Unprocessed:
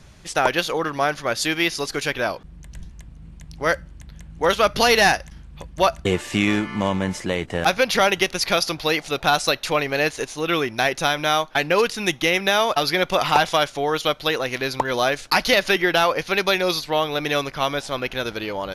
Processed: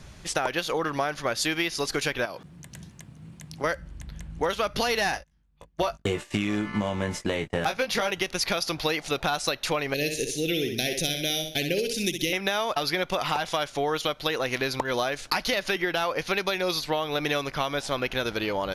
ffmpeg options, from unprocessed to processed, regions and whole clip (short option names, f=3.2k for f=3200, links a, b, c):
-filter_complex "[0:a]asettb=1/sr,asplit=3[a][b][c];[a]atrim=end=2.254[d];[b]atrim=start=2.25:end=3.64,asetpts=PTS-STARTPTS,afade=t=in:d=0.004:c=qsin,afade=t=out:st=1.386:d=0.004:c=qsin,highpass=f=100:w=0.5412,highpass=f=100:w=1.3066,highshelf=f=8k:g=6,acompressor=threshold=-32dB:ratio=3:attack=3.2:release=140:knee=1:detection=peak[e];[c]atrim=start=3.636[f];[d][e]acrossfade=d=0.004:c1=hsin:c2=qsin[g];[g][f]acrossfade=d=0.004:c1=qsin:c2=hsin,asettb=1/sr,asplit=3[h][i][j];[h]atrim=end=5.114[k];[i]atrim=start=5.11:end=8.11,asetpts=PTS-STARTPTS,afade=t=in:d=0.004:c=qsin,afade=t=out:st=2.996:d=0.004:c=qsin,agate=range=-29dB:threshold=-33dB:ratio=16:release=100:detection=peak,asoftclip=type=hard:threshold=-8dB,asplit=2[l][m];[m]adelay=19,volume=-5.5dB[n];[l][n]amix=inputs=2:normalize=0,atrim=end_sample=132300[o];[j]atrim=start=8.106[p];[k][o]acrossfade=d=0.004:c1=hsin:c2=qsin[q];[q][p]acrossfade=d=0.004:c1=qsin:c2=hsin,asettb=1/sr,asplit=3[r][s][t];[r]atrim=end=9.944[u];[s]atrim=start=9.94:end=12.33,asetpts=PTS-STARTPTS,afade=t=in:d=0.004:c=qsin,afade=t=out:st=2.386:d=0.004:c=qsin,asuperstop=centerf=1100:order=4:qfactor=0.51,highshelf=f=9.7k:g=9,aecho=1:1:63|126|189|252:0.422|0.135|0.0432|0.0138,atrim=end_sample=105399[v];[t]atrim=start=12.326[w];[u][v]acrossfade=d=0.004:c1=hsin:c2=qsin[x];[x][w]acrossfade=d=0.004:c1=qsin:c2=hsin,alimiter=limit=-9.5dB:level=0:latency=1:release=322,acompressor=threshold=-24dB:ratio=6,volume=1dB"